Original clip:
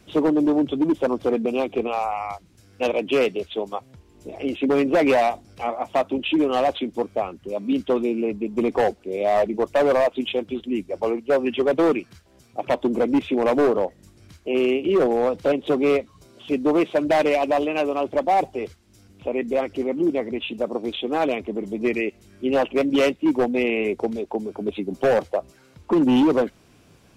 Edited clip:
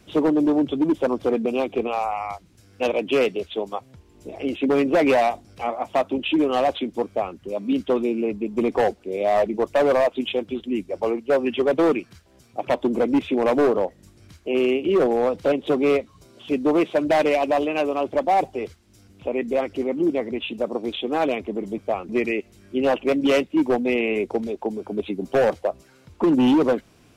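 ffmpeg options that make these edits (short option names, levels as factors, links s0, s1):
-filter_complex "[0:a]asplit=3[s0][s1][s2];[s0]atrim=end=21.782[s3];[s1]atrim=start=7.058:end=7.372[s4];[s2]atrim=start=21.778[s5];[s3][s4]acrossfade=d=0.004:c1=hsin:c2=hsin[s6];[s6][s5]acrossfade=d=0.004:c1=hsin:c2=hsin"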